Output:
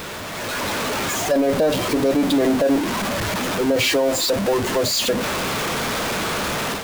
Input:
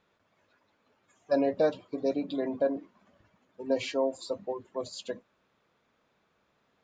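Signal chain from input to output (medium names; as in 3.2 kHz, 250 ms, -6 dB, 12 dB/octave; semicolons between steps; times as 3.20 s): jump at every zero crossing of -30 dBFS; peak limiter -23.5 dBFS, peak gain reduction 9 dB; level rider gain up to 8.5 dB; trim +4 dB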